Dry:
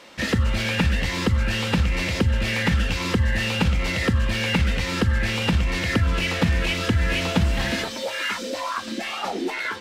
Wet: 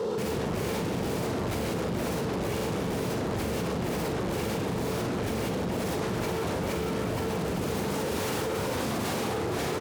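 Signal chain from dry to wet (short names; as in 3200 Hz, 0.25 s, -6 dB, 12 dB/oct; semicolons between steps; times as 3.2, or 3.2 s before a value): fixed phaser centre 420 Hz, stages 8; limiter -20.5 dBFS, peak gain reduction 10.5 dB; small resonant body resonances 440/2300 Hz, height 17 dB, ringing for 55 ms; tube stage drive 35 dB, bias 0.6; notch 2300 Hz; digital reverb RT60 1.4 s, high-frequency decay 0.7×, pre-delay 20 ms, DRR 8 dB; sine folder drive 16 dB, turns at -27.5 dBFS; HPF 75 Hz 24 dB/oct; tilt shelf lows +9 dB, about 940 Hz; doubler 41 ms -6 dB; fast leveller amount 100%; gain -5.5 dB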